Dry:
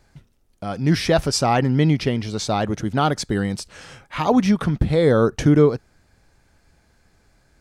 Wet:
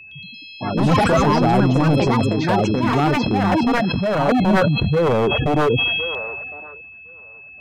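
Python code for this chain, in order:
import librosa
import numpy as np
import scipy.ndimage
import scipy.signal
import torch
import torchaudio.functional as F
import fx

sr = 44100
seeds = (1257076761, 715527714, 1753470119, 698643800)

y = scipy.signal.sosfilt(scipy.signal.butter(4, 65.0, 'highpass', fs=sr, output='sos'), x)
y = fx.spec_gate(y, sr, threshold_db=-10, keep='strong')
y = scipy.signal.sosfilt(scipy.signal.butter(2, 3800.0, 'lowpass', fs=sr, output='sos'), y)
y = fx.high_shelf(y, sr, hz=2200.0, db=-11.0)
y = 10.0 ** (-14.5 / 20.0) * (np.abs((y / 10.0 ** (-14.5 / 20.0) + 3.0) % 4.0 - 2.0) - 1.0)
y = y + 10.0 ** (-41.0 / 20.0) * np.sin(2.0 * np.pi * 2600.0 * np.arange(len(y)) / sr)
y = fx.echo_pitch(y, sr, ms=114, semitones=4, count=3, db_per_echo=-3.0)
y = fx.echo_wet_bandpass(y, sr, ms=1059, feedback_pct=35, hz=920.0, wet_db=-23.5)
y = fx.sustainer(y, sr, db_per_s=21.0)
y = y * 10.0 ** (2.5 / 20.0)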